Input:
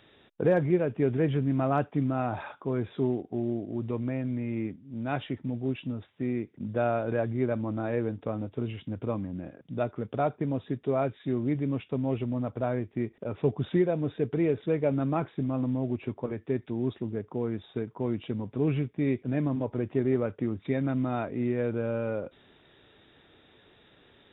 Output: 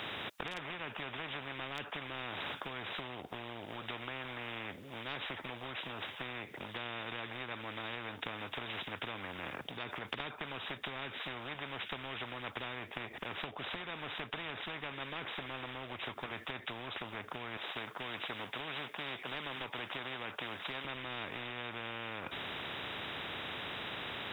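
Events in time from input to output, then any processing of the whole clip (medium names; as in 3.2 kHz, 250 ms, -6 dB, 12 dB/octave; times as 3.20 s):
9.58–10.20 s: compression, threshold -36 dBFS
17.57–20.85 s: high-pass 410 Hz
whole clip: high-pass 130 Hz 12 dB/octave; compression, threshold -34 dBFS; spectrum-flattening compressor 10:1; trim +5 dB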